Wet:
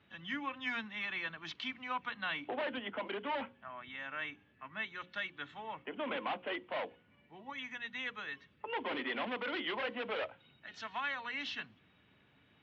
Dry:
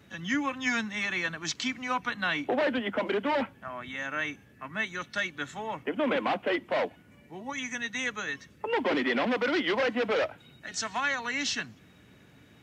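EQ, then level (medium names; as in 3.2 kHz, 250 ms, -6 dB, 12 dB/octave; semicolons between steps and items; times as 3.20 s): four-pole ladder low-pass 3.8 kHz, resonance 45%; peaking EQ 1 kHz +5 dB 0.95 oct; hum notches 60/120/180/240/300/360/420/480/540 Hz; -3.5 dB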